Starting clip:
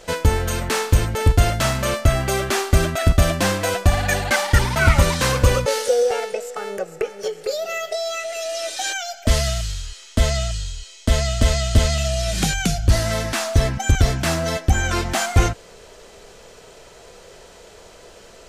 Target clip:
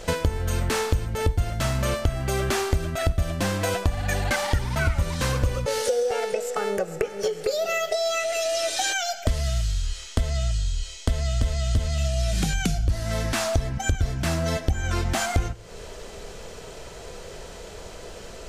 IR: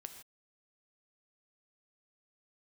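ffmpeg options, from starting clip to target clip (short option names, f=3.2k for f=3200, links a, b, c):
-filter_complex "[0:a]lowshelf=f=200:g=7.5,acompressor=threshold=-24dB:ratio=6,asplit=2[a][b];[1:a]atrim=start_sample=2205[c];[b][c]afir=irnorm=-1:irlink=0,volume=-3dB[d];[a][d]amix=inputs=2:normalize=0"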